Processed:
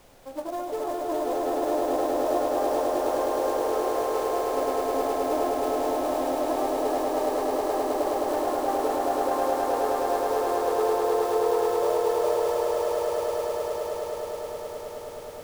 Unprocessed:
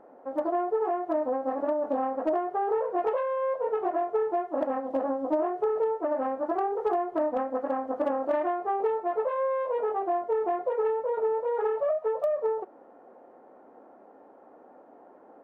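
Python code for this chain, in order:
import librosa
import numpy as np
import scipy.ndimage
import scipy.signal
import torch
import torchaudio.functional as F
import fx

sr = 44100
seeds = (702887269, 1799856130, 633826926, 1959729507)

y = fx.quant_float(x, sr, bits=2)
y = fx.dmg_noise_colour(y, sr, seeds[0], colour='pink', level_db=-52.0)
y = fx.echo_swell(y, sr, ms=105, loudest=8, wet_db=-4)
y = y * 10.0 ** (-5.0 / 20.0)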